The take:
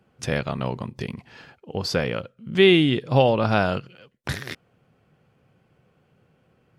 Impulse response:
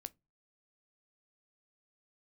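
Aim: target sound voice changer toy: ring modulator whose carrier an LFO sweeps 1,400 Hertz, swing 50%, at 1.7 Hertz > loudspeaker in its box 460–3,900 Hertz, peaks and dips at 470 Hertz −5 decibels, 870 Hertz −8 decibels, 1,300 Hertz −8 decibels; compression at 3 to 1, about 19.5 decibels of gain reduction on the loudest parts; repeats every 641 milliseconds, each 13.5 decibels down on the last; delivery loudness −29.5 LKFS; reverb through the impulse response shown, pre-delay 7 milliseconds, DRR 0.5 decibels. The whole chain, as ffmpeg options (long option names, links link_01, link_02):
-filter_complex "[0:a]acompressor=threshold=-39dB:ratio=3,aecho=1:1:641|1282:0.211|0.0444,asplit=2[link_01][link_02];[1:a]atrim=start_sample=2205,adelay=7[link_03];[link_02][link_03]afir=irnorm=-1:irlink=0,volume=4.5dB[link_04];[link_01][link_04]amix=inputs=2:normalize=0,aeval=exprs='val(0)*sin(2*PI*1400*n/s+1400*0.5/1.7*sin(2*PI*1.7*n/s))':channel_layout=same,highpass=460,equalizer=frequency=470:width_type=q:width=4:gain=-5,equalizer=frequency=870:width_type=q:width=4:gain=-8,equalizer=frequency=1300:width_type=q:width=4:gain=-8,lowpass=frequency=3900:width=0.5412,lowpass=frequency=3900:width=1.3066,volume=11.5dB"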